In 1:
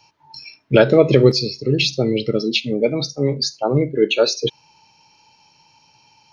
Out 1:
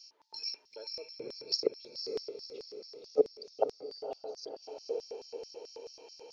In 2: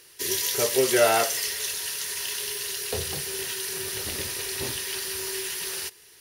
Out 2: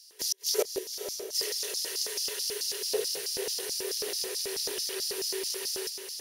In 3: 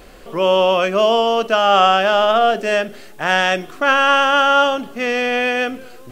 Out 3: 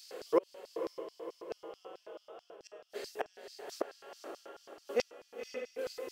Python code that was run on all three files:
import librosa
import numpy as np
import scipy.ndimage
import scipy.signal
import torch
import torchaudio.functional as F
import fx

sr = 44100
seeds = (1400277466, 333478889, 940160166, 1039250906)

y = fx.gate_flip(x, sr, shuts_db=-12.0, range_db=-37)
y = fx.echo_diffused(y, sr, ms=525, feedback_pct=53, wet_db=-6)
y = fx.filter_lfo_highpass(y, sr, shape='square', hz=4.6, low_hz=440.0, high_hz=5000.0, q=4.8)
y = y * 10.0 ** (-7.0 / 20.0)